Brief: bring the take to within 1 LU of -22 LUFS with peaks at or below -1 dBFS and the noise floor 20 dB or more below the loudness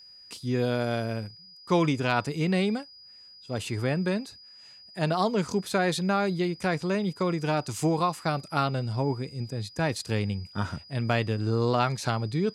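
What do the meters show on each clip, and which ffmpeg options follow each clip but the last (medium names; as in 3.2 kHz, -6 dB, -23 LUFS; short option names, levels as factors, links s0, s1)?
steady tone 4.9 kHz; tone level -48 dBFS; loudness -28.0 LUFS; peak level -11.0 dBFS; loudness target -22.0 LUFS
-> -af "bandreject=f=4900:w=30"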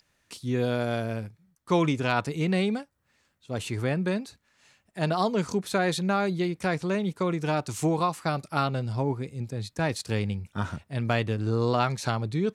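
steady tone not found; loudness -28.0 LUFS; peak level -11.0 dBFS; loudness target -22.0 LUFS
-> -af "volume=2"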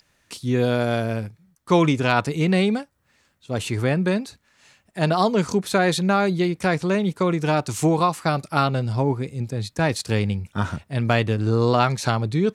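loudness -22.0 LUFS; peak level -5.0 dBFS; noise floor -66 dBFS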